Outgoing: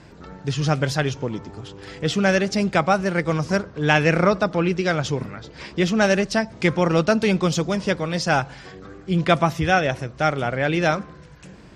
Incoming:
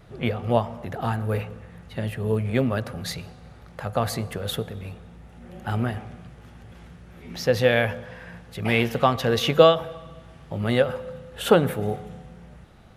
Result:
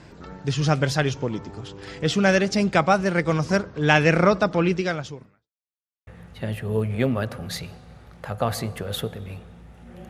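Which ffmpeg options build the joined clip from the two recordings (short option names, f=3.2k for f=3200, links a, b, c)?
-filter_complex "[0:a]apad=whole_dur=10.09,atrim=end=10.09,asplit=2[a][b];[a]atrim=end=5.5,asetpts=PTS-STARTPTS,afade=t=out:st=4.73:d=0.77:c=qua[c];[b]atrim=start=5.5:end=6.07,asetpts=PTS-STARTPTS,volume=0[d];[1:a]atrim=start=1.62:end=5.64,asetpts=PTS-STARTPTS,afade=t=in:d=0.004:c=hsin[e];[c][d][e]concat=n=3:v=0:a=1"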